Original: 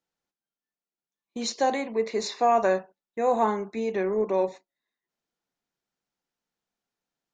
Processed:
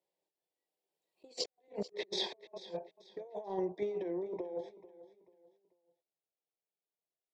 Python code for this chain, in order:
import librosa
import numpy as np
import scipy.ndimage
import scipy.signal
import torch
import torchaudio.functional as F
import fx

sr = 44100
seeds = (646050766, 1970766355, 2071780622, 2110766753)

p1 = fx.doppler_pass(x, sr, speed_mps=31, closest_m=3.3, pass_at_s=1.48)
p2 = scipy.signal.sosfilt(scipy.signal.butter(4, 190.0, 'highpass', fs=sr, output='sos'), p1)
p3 = fx.tilt_eq(p2, sr, slope=-2.5)
p4 = fx.level_steps(p3, sr, step_db=13)
p5 = p3 + (p4 * librosa.db_to_amplitude(-0.5))
p6 = fx.peak_eq(p5, sr, hz=6300.0, db=-10.5, octaves=0.22)
p7 = fx.fixed_phaser(p6, sr, hz=560.0, stages=4)
p8 = fx.over_compress(p7, sr, threshold_db=-52.0, ratio=-0.5)
p9 = p8 + fx.echo_feedback(p8, sr, ms=439, feedback_pct=34, wet_db=-17, dry=0)
y = p9 * librosa.db_to_amplitude(7.0)